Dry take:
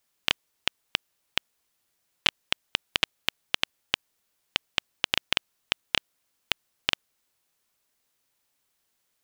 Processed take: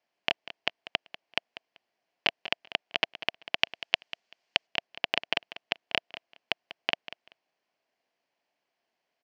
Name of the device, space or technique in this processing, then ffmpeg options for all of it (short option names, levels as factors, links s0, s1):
kitchen radio: -filter_complex "[0:a]asettb=1/sr,asplit=3[s0][s1][s2];[s0]atrim=end=3.584[s3];[s1]atrim=start=3.58:end=4.67,asetpts=PTS-STARTPTS,afade=t=in:d=0.004:c=qsin,afade=t=out:st=1.086:d=0.004:c=qsin,highshelf=f=2200:g=9[s4];[s2]atrim=start=4.666[s5];[s3][s4]acrossfade=d=0.004:c1=hsin:c2=qsin[s6];[s6][s5]acrossfade=d=0.004:c1=qsin:c2=hsin,highpass=210,equalizer=f=680:t=q:w=4:g=9,equalizer=f=1300:t=q:w=4:g=-7,equalizer=f=3700:t=q:w=4:g=-10,lowpass=f=4400:w=0.5412,lowpass=f=4400:w=1.3066,aecho=1:1:193|386:0.178|0.032"